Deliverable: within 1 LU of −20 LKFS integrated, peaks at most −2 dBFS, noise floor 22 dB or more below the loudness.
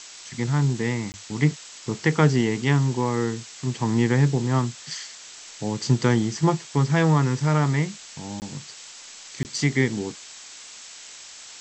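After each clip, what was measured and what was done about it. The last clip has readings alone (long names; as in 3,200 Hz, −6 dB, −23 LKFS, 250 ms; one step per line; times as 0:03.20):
number of dropouts 3; longest dropout 19 ms; background noise floor −43 dBFS; target noise floor −46 dBFS; integrated loudness −23.5 LKFS; sample peak −4.5 dBFS; target loudness −20.0 LKFS
→ repair the gap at 0:01.12/0:08.40/0:09.43, 19 ms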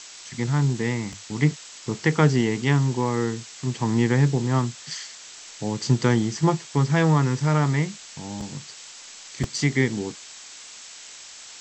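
number of dropouts 0; background noise floor −43 dBFS; target noise floor −46 dBFS
→ noise reduction from a noise print 6 dB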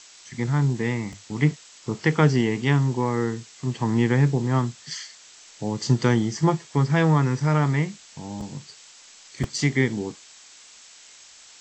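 background noise floor −49 dBFS; integrated loudness −23.5 LKFS; sample peak −4.5 dBFS; target loudness −20.0 LKFS
→ level +3.5 dB
brickwall limiter −2 dBFS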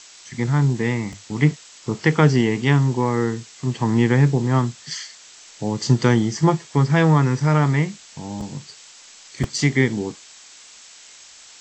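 integrated loudness −20.0 LKFS; sample peak −2.0 dBFS; background noise floor −46 dBFS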